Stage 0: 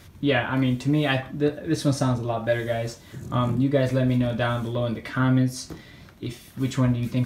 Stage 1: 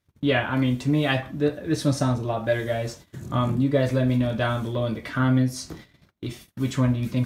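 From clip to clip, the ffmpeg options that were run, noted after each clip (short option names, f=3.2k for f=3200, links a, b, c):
-af "agate=range=-30dB:threshold=-43dB:ratio=16:detection=peak"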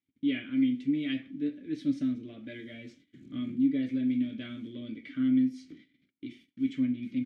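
-filter_complex "[0:a]asplit=3[a][b][c];[a]bandpass=f=270:t=q:w=8,volume=0dB[d];[b]bandpass=f=2.29k:t=q:w=8,volume=-6dB[e];[c]bandpass=f=3.01k:t=q:w=8,volume=-9dB[f];[d][e][f]amix=inputs=3:normalize=0,asplit=2[g][h];[h]adelay=105,volume=-28dB,highshelf=f=4k:g=-2.36[i];[g][i]amix=inputs=2:normalize=0"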